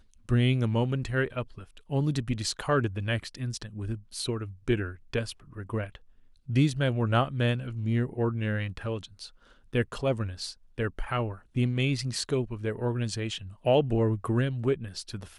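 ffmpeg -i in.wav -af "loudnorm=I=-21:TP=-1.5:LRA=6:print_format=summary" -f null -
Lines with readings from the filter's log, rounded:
Input Integrated:    -29.4 LUFS
Input True Peak:     -11.7 dBTP
Input LRA:             2.7 LU
Input Threshold:     -39.7 LUFS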